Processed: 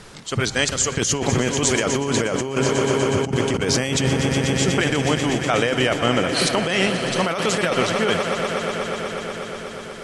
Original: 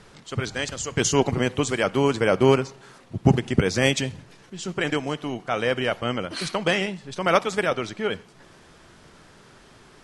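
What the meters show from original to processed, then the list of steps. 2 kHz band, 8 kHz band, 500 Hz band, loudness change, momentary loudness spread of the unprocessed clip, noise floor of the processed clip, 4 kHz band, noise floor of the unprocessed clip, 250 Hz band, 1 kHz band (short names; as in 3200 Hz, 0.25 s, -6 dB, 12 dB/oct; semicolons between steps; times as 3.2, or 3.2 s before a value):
+4.5 dB, +9.0 dB, +3.0 dB, +3.0 dB, 11 LU, -34 dBFS, +7.0 dB, -52 dBFS, +4.0 dB, +3.5 dB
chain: high shelf 4900 Hz +6.5 dB; swelling echo 0.122 s, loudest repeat 5, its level -15.5 dB; negative-ratio compressor -24 dBFS, ratio -1; gain +4.5 dB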